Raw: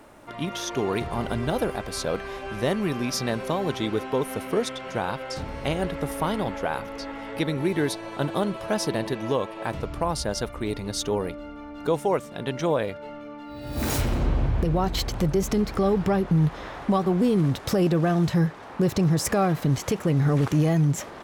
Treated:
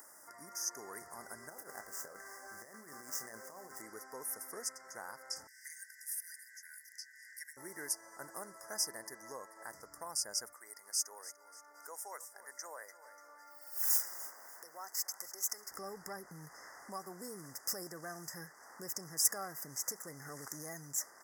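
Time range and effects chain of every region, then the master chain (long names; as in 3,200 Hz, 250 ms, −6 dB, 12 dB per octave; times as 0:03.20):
0:01.49–0:03.82: running median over 9 samples + compressor whose output falls as the input rises −28 dBFS, ratio −0.5 + double-tracking delay 27 ms −9.5 dB
0:05.47–0:07.57: linear-phase brick-wall high-pass 1,600 Hz + frequency shifter −130 Hz
0:10.53–0:15.71: high-pass filter 670 Hz + repeating echo 294 ms, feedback 34%, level −16 dB
whole clip: Chebyshev band-stop filter 2,000–4,900 Hz, order 5; first difference; upward compression, threshold −49 dBFS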